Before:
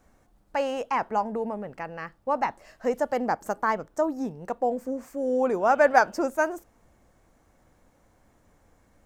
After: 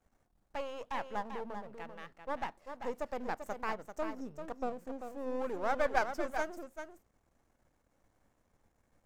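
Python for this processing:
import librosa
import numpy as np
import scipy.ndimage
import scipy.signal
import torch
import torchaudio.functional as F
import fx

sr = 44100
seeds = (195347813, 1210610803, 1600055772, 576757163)

p1 = np.where(x < 0.0, 10.0 ** (-12.0 / 20.0) * x, x)
p2 = p1 + fx.echo_single(p1, sr, ms=391, db=-8.0, dry=0)
y = F.gain(torch.from_numpy(p2), -9.0).numpy()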